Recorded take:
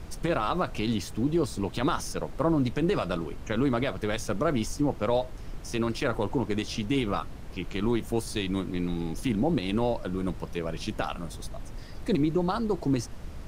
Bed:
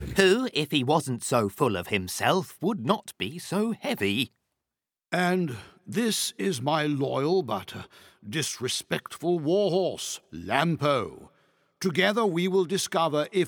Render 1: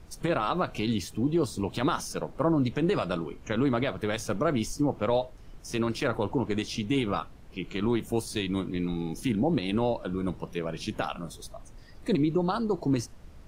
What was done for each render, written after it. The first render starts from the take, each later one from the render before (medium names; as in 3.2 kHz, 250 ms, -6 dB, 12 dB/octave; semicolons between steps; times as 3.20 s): noise print and reduce 9 dB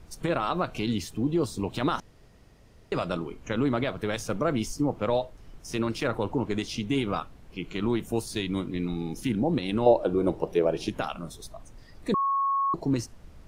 2.00–2.92 s: room tone; 9.86–10.89 s: high-order bell 520 Hz +10.5 dB; 12.14–12.74 s: bleep 1.1 kHz -22.5 dBFS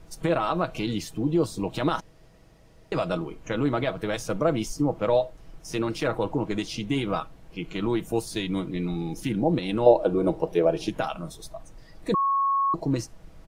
peaking EQ 640 Hz +3.5 dB 0.74 oct; comb 6.2 ms, depth 41%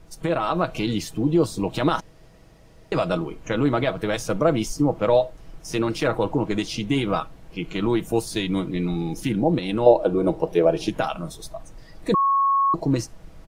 level rider gain up to 4 dB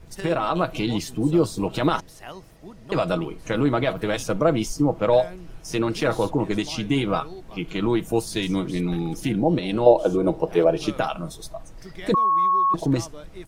add bed -16 dB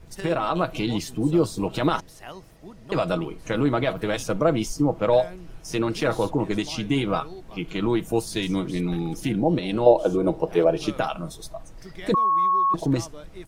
trim -1 dB